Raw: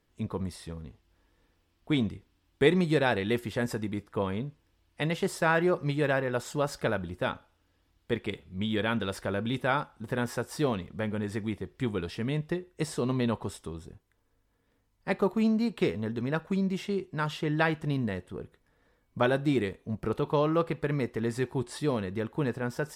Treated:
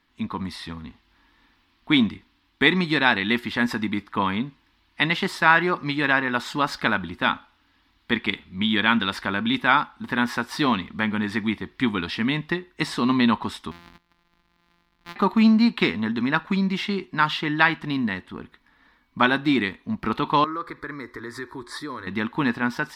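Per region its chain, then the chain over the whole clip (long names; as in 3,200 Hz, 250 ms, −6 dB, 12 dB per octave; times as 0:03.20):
0:13.71–0:15.16: samples sorted by size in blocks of 256 samples + downward compressor 2.5 to 1, threshold −54 dBFS
0:20.44–0:22.07: downward compressor 3 to 1, threshold −33 dBFS + phaser with its sweep stopped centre 760 Hz, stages 6
whole clip: octave-band graphic EQ 125/250/500/1,000/2,000/4,000/8,000 Hz −7/+11/−11/+11/+8/+11/−6 dB; automatic gain control gain up to 3 dB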